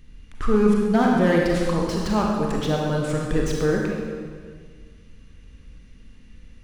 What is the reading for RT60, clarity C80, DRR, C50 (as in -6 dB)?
1.7 s, 2.0 dB, -1.5 dB, 0.0 dB